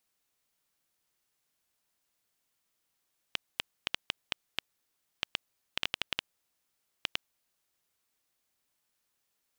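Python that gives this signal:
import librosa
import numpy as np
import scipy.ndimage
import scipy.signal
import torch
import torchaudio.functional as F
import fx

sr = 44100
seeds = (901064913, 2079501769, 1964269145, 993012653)

y = fx.geiger_clicks(sr, seeds[0], length_s=4.32, per_s=4.1, level_db=-10.5)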